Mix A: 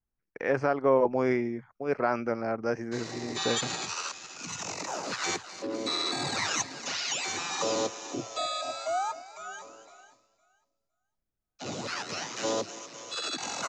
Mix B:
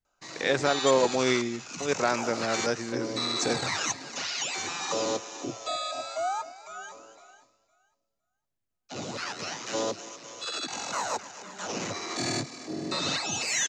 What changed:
speech: remove running mean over 12 samples; background: entry -2.70 s

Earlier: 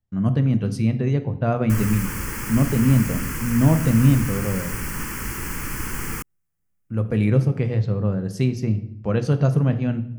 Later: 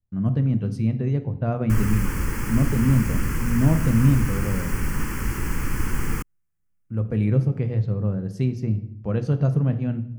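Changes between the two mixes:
speech -6.0 dB; master: add tilt -1.5 dB/oct

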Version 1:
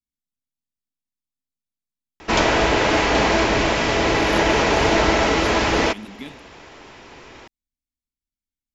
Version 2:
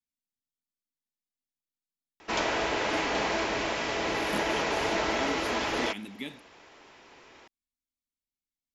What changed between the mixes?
background -10.0 dB; master: add low shelf 180 Hz -11 dB

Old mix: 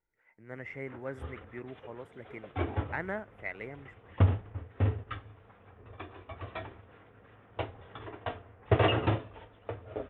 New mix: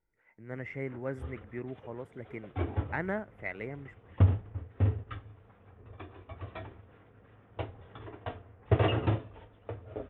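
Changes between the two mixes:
background -5.0 dB; master: add low shelf 400 Hz +6.5 dB

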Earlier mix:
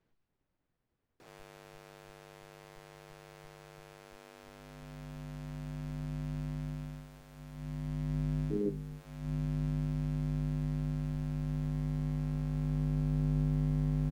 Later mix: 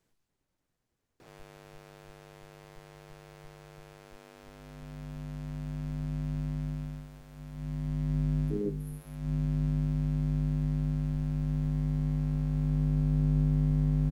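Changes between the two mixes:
speech: remove air absorption 220 m; background: add low shelf 240 Hz +6 dB

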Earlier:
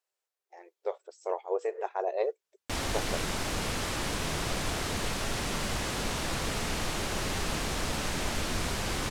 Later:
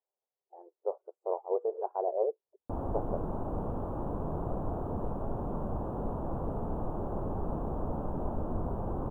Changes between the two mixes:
background: remove LPF 9100 Hz 12 dB/oct; master: add inverse Chebyshev low-pass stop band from 1900 Hz, stop band 40 dB

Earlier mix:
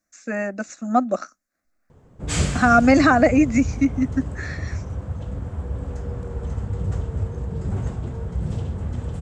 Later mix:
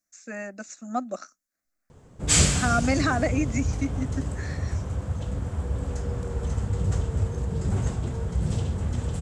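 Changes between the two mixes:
speech -10.5 dB; master: add high shelf 3300 Hz +11 dB

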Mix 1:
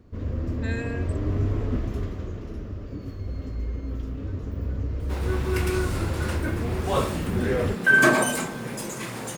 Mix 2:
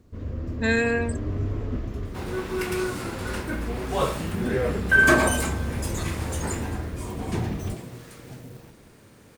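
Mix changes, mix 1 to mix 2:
speech +11.5 dB; first sound -3.0 dB; second sound: entry -2.95 s

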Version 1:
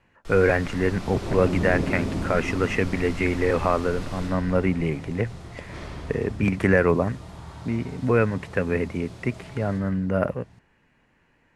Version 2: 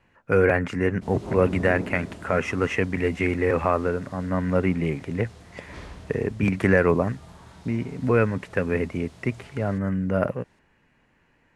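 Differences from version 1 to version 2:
first sound: muted; reverb: off

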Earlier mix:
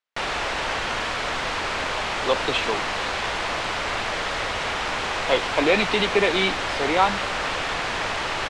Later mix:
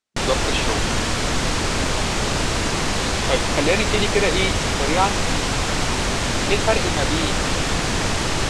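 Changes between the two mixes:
speech: entry -2.00 s; background: remove three-band isolator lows -15 dB, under 500 Hz, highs -15 dB, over 3800 Hz

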